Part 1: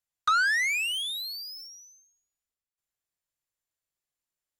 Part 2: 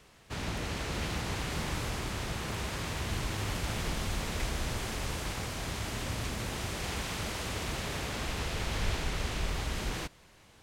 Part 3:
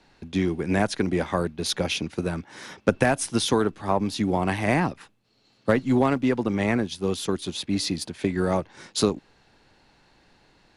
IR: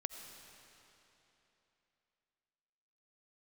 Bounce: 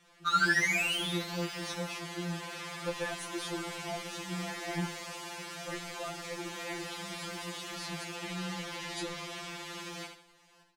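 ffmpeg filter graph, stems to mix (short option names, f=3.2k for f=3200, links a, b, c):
-filter_complex "[0:a]acrusher=bits=8:mix=0:aa=0.000001,volume=-1dB,afade=t=out:st=0.91:d=0.32:silence=0.334965,asplit=2[a][b];[b]volume=-7dB[c];[1:a]highpass=f=380:p=1,highshelf=f=11k:g=-7,aeval=exprs='0.0596*(cos(1*acos(clip(val(0)/0.0596,-1,1)))-cos(1*PI/2))+0.0119*(cos(3*acos(clip(val(0)/0.0596,-1,1)))-cos(3*PI/2))+0.00531*(cos(5*acos(clip(val(0)/0.0596,-1,1)))-cos(5*PI/2))':c=same,volume=1dB,asplit=2[d][e];[e]volume=-6.5dB[f];[2:a]volume=-13.5dB[g];[c][f]amix=inputs=2:normalize=0,aecho=0:1:75|150|225|300|375:1|0.32|0.102|0.0328|0.0105[h];[a][d][g][h]amix=inputs=4:normalize=0,afftfilt=real='re*2.83*eq(mod(b,8),0)':imag='im*2.83*eq(mod(b,8),0)':win_size=2048:overlap=0.75"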